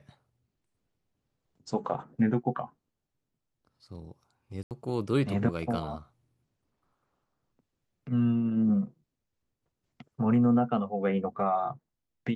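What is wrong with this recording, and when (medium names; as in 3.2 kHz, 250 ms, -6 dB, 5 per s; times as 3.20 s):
4.63–4.71 s: dropout 78 ms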